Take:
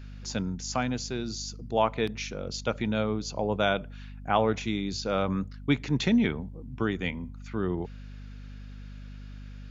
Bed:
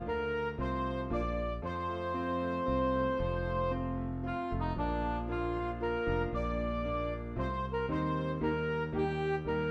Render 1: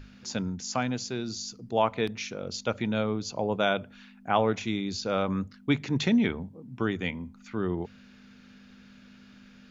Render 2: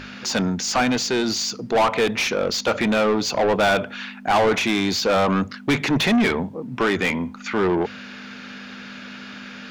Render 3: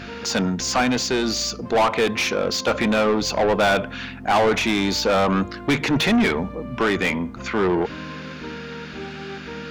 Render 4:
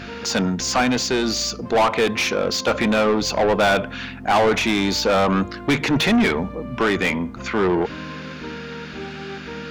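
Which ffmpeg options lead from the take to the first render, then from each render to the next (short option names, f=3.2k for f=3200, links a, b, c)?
-af "bandreject=f=50:t=h:w=6,bandreject=f=100:t=h:w=6,bandreject=f=150:t=h:w=6"
-filter_complex "[0:a]asplit=2[a][b];[b]highpass=f=720:p=1,volume=29dB,asoftclip=type=tanh:threshold=-10dB[c];[a][c]amix=inputs=2:normalize=0,lowpass=f=3k:p=1,volume=-6dB"
-filter_complex "[1:a]volume=-3dB[a];[0:a][a]amix=inputs=2:normalize=0"
-af "volume=1dB"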